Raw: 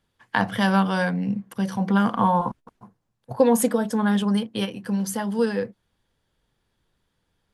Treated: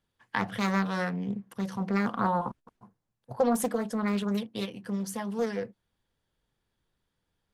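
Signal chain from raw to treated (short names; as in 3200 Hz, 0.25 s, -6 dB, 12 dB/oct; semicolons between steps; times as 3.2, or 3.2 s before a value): Doppler distortion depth 0.45 ms; gain -7 dB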